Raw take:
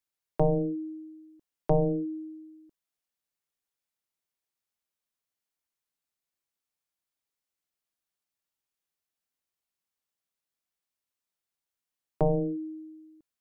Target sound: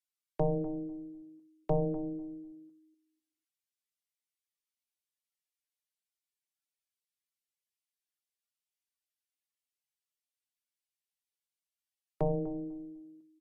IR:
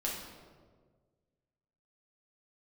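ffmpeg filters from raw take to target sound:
-filter_complex "[0:a]asplit=2[link_01][link_02];[link_02]adelay=248,lowpass=frequency=820:poles=1,volume=-12dB,asplit=2[link_03][link_04];[link_04]adelay=248,lowpass=frequency=820:poles=1,volume=0.24,asplit=2[link_05][link_06];[link_06]adelay=248,lowpass=frequency=820:poles=1,volume=0.24[link_07];[link_01][link_03][link_05][link_07]amix=inputs=4:normalize=0,volume=-5.5dB" -ar 44100 -c:a libvorbis -b:a 48k

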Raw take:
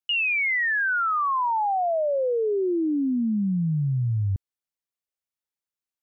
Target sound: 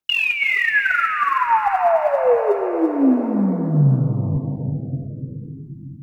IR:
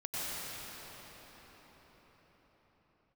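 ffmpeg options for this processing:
-filter_complex "[0:a]aphaser=in_gain=1:out_gain=1:delay=4.6:decay=0.64:speed=1.3:type=sinusoidal,asplit=2[link_01][link_02];[1:a]atrim=start_sample=2205,adelay=116[link_03];[link_02][link_03]afir=irnorm=-1:irlink=0,volume=-11.5dB[link_04];[link_01][link_04]amix=inputs=2:normalize=0,volume=2dB"

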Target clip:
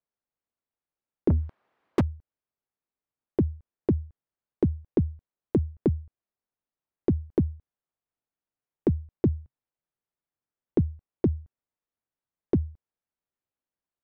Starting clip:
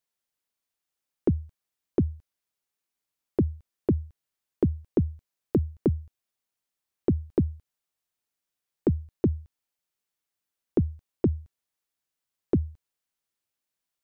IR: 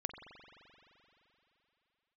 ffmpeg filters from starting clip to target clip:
-filter_complex "[0:a]asettb=1/sr,asplit=3[link_01][link_02][link_03];[link_01]atrim=end=1.304[link_04];[link_02]atrim=start=1.3:end=2.01,asetpts=PTS-STARTPTS,afade=type=in:duration=0.004:curve=qsin,afade=type=out:start_time=0.706:duration=0.004:curve=qsin,asplit=2[link_05][link_06];[link_06]highpass=frequency=720:poles=1,volume=35dB,asoftclip=type=tanh:threshold=-13dB[link_07];[link_05][link_07]amix=inputs=2:normalize=0,lowpass=frequency=1500:poles=1,volume=-6dB[link_08];[link_03]atrim=start=2.006[link_09];[link_04][link_08]acrossfade=duration=0.004:curve1=hsin:curve2=qsin[link_10];[link_10][link_09]acrossfade=duration=0.004:curve1=qsin:curve2=hsin,asettb=1/sr,asplit=3[link_11][link_12][link_13];[link_11]atrim=end=9.154[link_14];[link_12]atrim=start=9.15:end=10.81,asetpts=PTS-STARTPTS,afade=type=in:duration=0.004:curve=qsin,afade=type=out:start_time=1.656:duration=0.004:curve=qsin,equalizer=frequency=130:width_type=o:width=0.43:gain=3.5[link_15];[link_13]atrim=start=10.806[link_16];[link_14][link_15]acrossfade=duration=0.004:curve1=hsin:curve2=qsin[link_17];[link_17][link_16]acrossfade=duration=0.004:curve1=qsin:curve2=hsin,adynamicsmooth=sensitivity=5.5:basefreq=1600"

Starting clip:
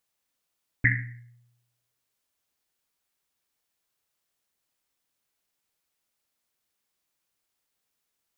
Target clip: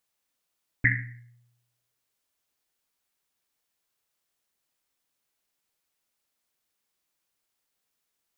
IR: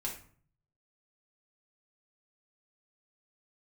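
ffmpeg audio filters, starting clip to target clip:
-af "equalizer=frequency=90:width_type=o:width=1.8:gain=-2"

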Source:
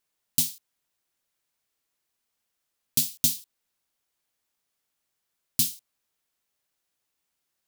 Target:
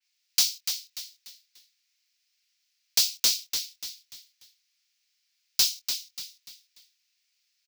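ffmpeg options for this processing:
ffmpeg -i in.wav -filter_complex "[0:a]highpass=frequency=2400:width_type=q:width=2.4,highshelf=frequency=7500:width_type=q:width=1.5:gain=-13.5,aexciter=amount=3.5:drive=2.4:freq=4400,volume=15dB,asoftclip=hard,volume=-15dB,asplit=2[link_01][link_02];[link_02]adelay=24,volume=-12dB[link_03];[link_01][link_03]amix=inputs=2:normalize=0,asplit=2[link_04][link_05];[link_05]asplit=4[link_06][link_07][link_08][link_09];[link_06]adelay=293,afreqshift=-110,volume=-7dB[link_10];[link_07]adelay=586,afreqshift=-220,volume=-16.4dB[link_11];[link_08]adelay=879,afreqshift=-330,volume=-25.7dB[link_12];[link_09]adelay=1172,afreqshift=-440,volume=-35.1dB[link_13];[link_10][link_11][link_12][link_13]amix=inputs=4:normalize=0[link_14];[link_04][link_14]amix=inputs=2:normalize=0,adynamicequalizer=threshold=0.0141:dfrequency=3500:dqfactor=0.7:tfrequency=3500:tqfactor=0.7:attack=5:release=100:ratio=0.375:range=2.5:mode=cutabove:tftype=highshelf" out.wav

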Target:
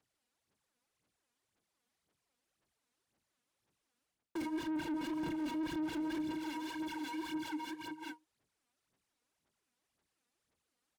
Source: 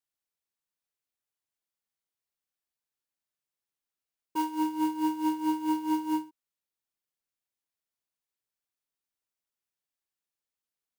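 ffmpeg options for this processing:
ffmpeg -i in.wav -filter_complex "[0:a]lowpass=frequency=11000:width=0.5412,lowpass=frequency=11000:width=1.3066,aeval=exprs='0.119*(cos(1*acos(clip(val(0)/0.119,-1,1)))-cos(1*PI/2))+0.000944*(cos(2*acos(clip(val(0)/0.119,-1,1)))-cos(2*PI/2))+0.00188*(cos(3*acos(clip(val(0)/0.119,-1,1)))-cos(3*PI/2))+0.015*(cos(7*acos(clip(val(0)/0.119,-1,1)))-cos(7*PI/2))':channel_layout=same,aeval=exprs='0.106*sin(PI/2*4.47*val(0)/0.106)':channel_layout=same,equalizer=frequency=8300:width=0.37:gain=-4.5,asplit=2[link_01][link_02];[link_02]aecho=0:1:386|772|1158|1544|1930:0.168|0.0873|0.0454|0.0236|0.0123[link_03];[link_01][link_03]amix=inputs=2:normalize=0,aphaser=in_gain=1:out_gain=1:delay=4.2:decay=0.66:speed=1.9:type=sinusoidal,acrossover=split=400[link_04][link_05];[link_05]acompressor=threshold=-38dB:ratio=5[link_06];[link_04][link_06]amix=inputs=2:normalize=0,aeval=exprs='(tanh(39.8*val(0)+0.3)-tanh(0.3))/39.8':channel_layout=same,areverse,acompressor=threshold=-49dB:ratio=6,areverse,highpass=frequency=150:poles=1,alimiter=level_in=27.5dB:limit=-24dB:level=0:latency=1:release=60,volume=-27.5dB,lowshelf=frequency=340:gain=10,volume=15dB" out.wav

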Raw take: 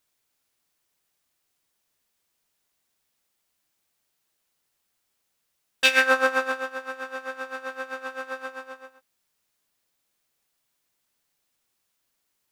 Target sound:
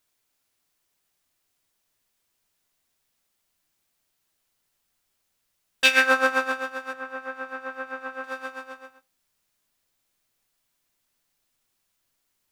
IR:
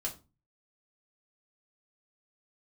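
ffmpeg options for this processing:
-filter_complex "[0:a]asettb=1/sr,asplit=3[link_01][link_02][link_03];[link_01]atrim=end=6.934[link_04];[link_02]atrim=start=6.93:end=8.24,asetpts=PTS-STARTPTS,afade=type=in:duration=0.004:curve=qsin,afade=type=out:start_time=1.306:duration=0.004:curve=qsin,acrossover=split=2500[link_05][link_06];[link_06]acompressor=threshold=-59dB:ratio=4:attack=1:release=60[link_07];[link_05][link_07]amix=inputs=2:normalize=0[link_08];[link_03]atrim=start=8.236[link_09];[link_04][link_08]acrossfade=duration=0.004:curve1=hsin:curve2=qsin[link_10];[link_10][link_09]acrossfade=duration=0.004:curve1=qsin:curve2=hsin,asplit=2[link_11][link_12];[link_12]asubboost=boost=3.5:cutoff=230[link_13];[1:a]atrim=start_sample=2205[link_14];[link_13][link_14]afir=irnorm=-1:irlink=0,volume=-11.5dB[link_15];[link_11][link_15]amix=inputs=2:normalize=0,volume=-1dB"

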